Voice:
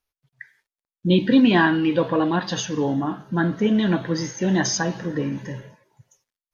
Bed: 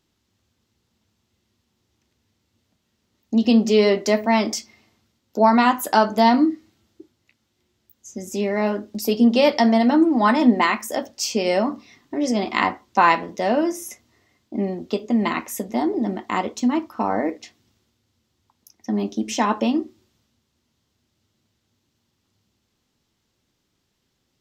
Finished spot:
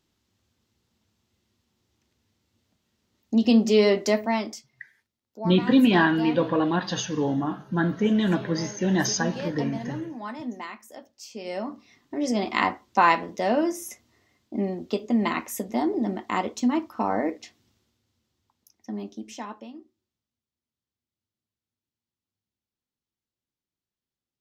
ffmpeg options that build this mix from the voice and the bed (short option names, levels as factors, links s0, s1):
-filter_complex "[0:a]adelay=4400,volume=0.75[s0];[1:a]volume=4.47,afade=t=out:st=4.05:d=0.6:silence=0.158489,afade=t=in:st=11.3:d=1.12:silence=0.16788,afade=t=out:st=17.69:d=1.98:silence=0.112202[s1];[s0][s1]amix=inputs=2:normalize=0"